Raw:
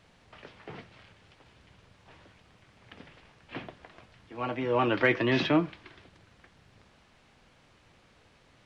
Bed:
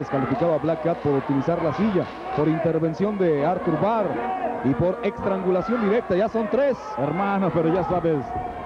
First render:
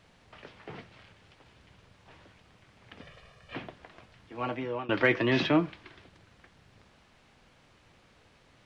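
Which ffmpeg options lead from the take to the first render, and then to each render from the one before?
ffmpeg -i in.wav -filter_complex "[0:a]asettb=1/sr,asplit=3[link_01][link_02][link_03];[link_01]atrim=end=3.014[link_04];[link_02]atrim=start=3.01:end=3.55,asetpts=PTS-STARTPTS,afade=type=in:duration=0.004:curve=qsin,afade=type=out:start_time=0.536:duration=0.004:curve=qsin,aecho=1:1:1.7:0.76,atrim=end_sample=23814[link_05];[link_03]atrim=start=3.546[link_06];[link_04][link_05]acrossfade=duration=0.004:curve1=hsin:curve2=qsin[link_07];[link_07][link_06]acrossfade=duration=0.004:curve1=qsin:curve2=hsin,asplit=2[link_08][link_09];[link_08]atrim=end=4.89,asetpts=PTS-STARTPTS,afade=type=out:start_time=4.49:duration=0.4:silence=0.0794328[link_10];[link_09]atrim=start=4.89,asetpts=PTS-STARTPTS,afade=type=in:duration=0.004:curve=hsin:silence=0.0794328[link_11];[link_10][link_11]concat=n=2:v=0:a=1" out.wav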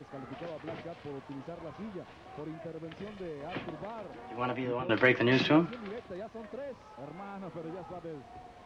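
ffmpeg -i in.wav -i bed.wav -filter_complex "[1:a]volume=-21dB[link_01];[0:a][link_01]amix=inputs=2:normalize=0" out.wav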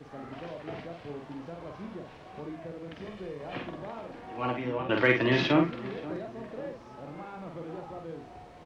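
ffmpeg -i in.wav -filter_complex "[0:a]asplit=2[link_01][link_02];[link_02]adelay=48,volume=-4dB[link_03];[link_01][link_03]amix=inputs=2:normalize=0,asplit=2[link_04][link_05];[link_05]adelay=533,lowpass=frequency=1200:poles=1,volume=-15.5dB,asplit=2[link_06][link_07];[link_07]adelay=533,lowpass=frequency=1200:poles=1,volume=0.51,asplit=2[link_08][link_09];[link_09]adelay=533,lowpass=frequency=1200:poles=1,volume=0.51,asplit=2[link_10][link_11];[link_11]adelay=533,lowpass=frequency=1200:poles=1,volume=0.51,asplit=2[link_12][link_13];[link_13]adelay=533,lowpass=frequency=1200:poles=1,volume=0.51[link_14];[link_04][link_06][link_08][link_10][link_12][link_14]amix=inputs=6:normalize=0" out.wav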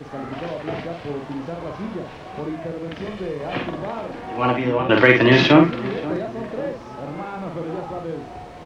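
ffmpeg -i in.wav -af "volume=11.5dB,alimiter=limit=-1dB:level=0:latency=1" out.wav

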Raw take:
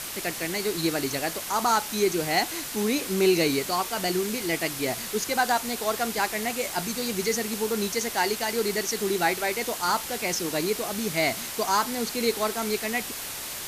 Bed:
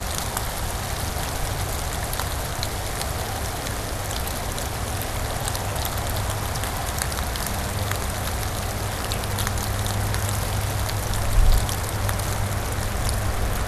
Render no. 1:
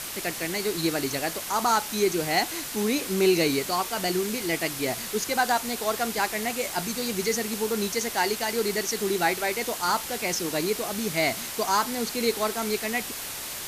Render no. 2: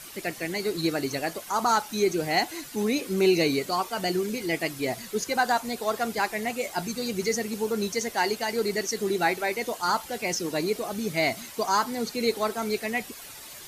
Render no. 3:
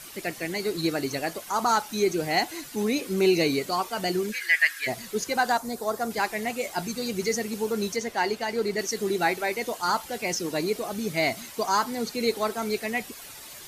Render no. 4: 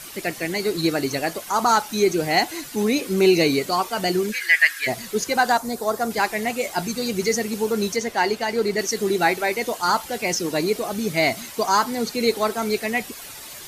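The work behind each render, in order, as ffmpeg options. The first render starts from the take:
ffmpeg -i in.wav -af anull out.wav
ffmpeg -i in.wav -af "afftdn=noise_reduction=11:noise_floor=-35" out.wav
ffmpeg -i in.wav -filter_complex "[0:a]asplit=3[link_01][link_02][link_03];[link_01]afade=type=out:start_time=4.31:duration=0.02[link_04];[link_02]highpass=frequency=1700:width_type=q:width=11,afade=type=in:start_time=4.31:duration=0.02,afade=type=out:start_time=4.86:duration=0.02[link_05];[link_03]afade=type=in:start_time=4.86:duration=0.02[link_06];[link_04][link_05][link_06]amix=inputs=3:normalize=0,asettb=1/sr,asplit=3[link_07][link_08][link_09];[link_07]atrim=end=5.574[link_10];[link_08]atrim=start=5.57:end=6.11,asetpts=PTS-STARTPTS,afade=type=in:duration=0.004:curve=qsin,afade=type=out:start_time=0.536:duration=0.004:curve=qsin,equalizer=frequency=2700:width_type=o:width=1.1:gain=-11.5[link_11];[link_09]atrim=start=6.106[link_12];[link_10][link_11]acrossfade=duration=0.004:curve1=hsin:curve2=qsin[link_13];[link_13][link_12]acrossfade=duration=0.004:curve1=qsin:curve2=hsin,asettb=1/sr,asplit=3[link_14][link_15][link_16];[link_14]atrim=end=7.964[link_17];[link_15]atrim=start=7.96:end=8.79,asetpts=PTS-STARTPTS,afade=type=in:duration=0.004:curve=qsin,afade=type=out:start_time=0.826:duration=0.004:curve=qsin,highshelf=frequency=5900:gain=-9.5[link_18];[link_16]atrim=start=8.786[link_19];[link_17][link_18]acrossfade=duration=0.004:curve1=hsin:curve2=qsin[link_20];[link_20][link_19]acrossfade=duration=0.004:curve1=qsin:curve2=hsin" out.wav
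ffmpeg -i in.wav -af "volume=5dB" out.wav

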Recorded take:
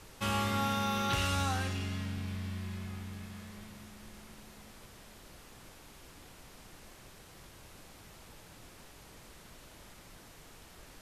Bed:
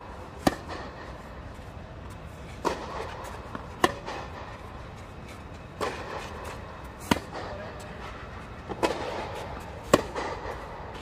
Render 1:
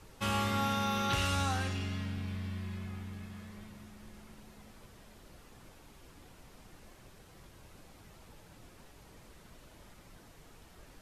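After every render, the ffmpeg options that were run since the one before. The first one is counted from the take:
ffmpeg -i in.wav -af "afftdn=noise_reduction=6:noise_floor=-55" out.wav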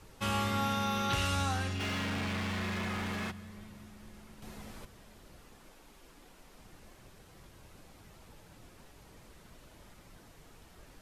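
ffmpeg -i in.wav -filter_complex "[0:a]asplit=3[link_01][link_02][link_03];[link_01]afade=type=out:start_time=1.79:duration=0.02[link_04];[link_02]asplit=2[link_05][link_06];[link_06]highpass=frequency=720:poles=1,volume=32dB,asoftclip=type=tanh:threshold=-27.5dB[link_07];[link_05][link_07]amix=inputs=2:normalize=0,lowpass=frequency=2800:poles=1,volume=-6dB,afade=type=in:start_time=1.79:duration=0.02,afade=type=out:start_time=3.3:duration=0.02[link_08];[link_03]afade=type=in:start_time=3.3:duration=0.02[link_09];[link_04][link_08][link_09]amix=inputs=3:normalize=0,asettb=1/sr,asplit=3[link_10][link_11][link_12];[link_10]atrim=end=4.424[link_13];[link_11]atrim=start=4.42:end=4.85,asetpts=PTS-STARTPTS,afade=type=in:duration=0.004:curve=qsin,afade=type=out:start_time=0.426:duration=0.004:curve=qsin,acontrast=89[link_14];[link_12]atrim=start=4.846[link_15];[link_13][link_14]acrossfade=duration=0.004:curve1=hsin:curve2=qsin[link_16];[link_16][link_15]acrossfade=duration=0.004:curve1=qsin:curve2=hsin,asettb=1/sr,asplit=3[link_17][link_18][link_19];[link_17]atrim=end=5.554[link_20];[link_18]atrim=start=5.55:end=6.59,asetpts=PTS-STARTPTS,afade=type=in:duration=0.004:curve=qsin,afade=type=out:start_time=1.036:duration=0.004:curve=qsin,equalizer=frequency=97:width=1.5:gain=-14.5[link_21];[link_19]atrim=start=6.586[link_22];[link_20][link_21]acrossfade=duration=0.004:curve1=hsin:curve2=qsin[link_23];[link_23][link_22]acrossfade=duration=0.004:curve1=qsin:curve2=hsin" out.wav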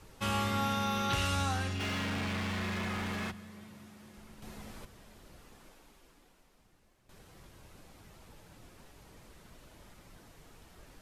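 ffmpeg -i in.wav -filter_complex "[0:a]asettb=1/sr,asplit=3[link_01][link_02][link_03];[link_01]atrim=end=3.344[link_04];[link_02]atrim=start=3.34:end=4.17,asetpts=PTS-STARTPTS,afade=type=in:duration=0.004:curve=qsin,afade=type=out:start_time=0.826:duration=0.004:curve=qsin,highpass=110[link_05];[link_03]atrim=start=4.166[link_06];[link_04][link_05]acrossfade=duration=0.004:curve1=hsin:curve2=qsin[link_07];[link_07][link_06]acrossfade=duration=0.004:curve1=qsin:curve2=hsin,asplit=2[link_08][link_09];[link_08]atrim=end=7.09,asetpts=PTS-STARTPTS,afade=type=out:start_time=5.64:duration=1.45:curve=qua:silence=0.199526[link_10];[link_09]atrim=start=7.09,asetpts=PTS-STARTPTS,afade=type=in:duration=0.004:curve=hsin:silence=0.199526[link_11];[link_10][link_11]concat=n=2:v=0:a=1" out.wav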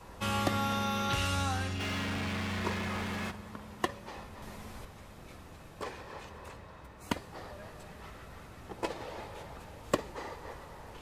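ffmpeg -i in.wav -i bed.wav -filter_complex "[1:a]volume=-9.5dB[link_01];[0:a][link_01]amix=inputs=2:normalize=0" out.wav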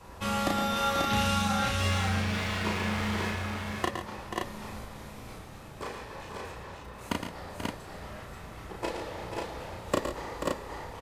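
ffmpeg -i in.wav -filter_complex "[0:a]asplit=2[link_01][link_02];[link_02]adelay=34,volume=-2.5dB[link_03];[link_01][link_03]amix=inputs=2:normalize=0,aecho=1:1:114|136|485|537:0.398|0.224|0.355|0.708" out.wav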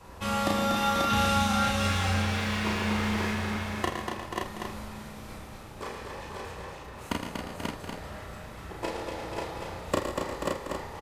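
ffmpeg -i in.wav -filter_complex "[0:a]asplit=2[link_01][link_02];[link_02]adelay=47,volume=-11dB[link_03];[link_01][link_03]amix=inputs=2:normalize=0,aecho=1:1:240:0.531" out.wav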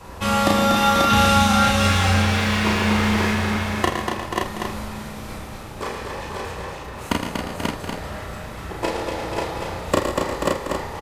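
ffmpeg -i in.wav -af "volume=9dB,alimiter=limit=-3dB:level=0:latency=1" out.wav

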